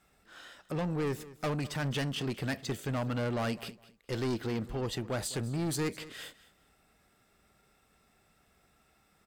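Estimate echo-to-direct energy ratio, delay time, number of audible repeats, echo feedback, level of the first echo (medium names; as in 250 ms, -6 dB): -18.0 dB, 206 ms, 2, 23%, -18.0 dB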